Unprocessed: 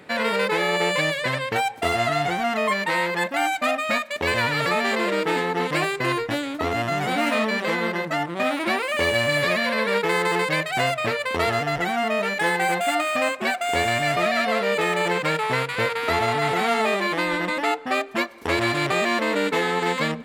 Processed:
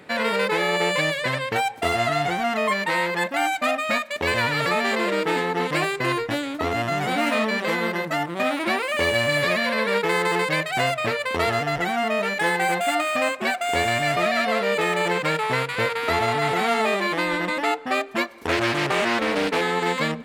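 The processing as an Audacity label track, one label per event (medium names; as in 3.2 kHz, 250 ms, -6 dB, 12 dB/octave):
7.680000	8.420000	treble shelf 11 kHz +8 dB
18.470000	19.610000	loudspeaker Doppler distortion depth 0.33 ms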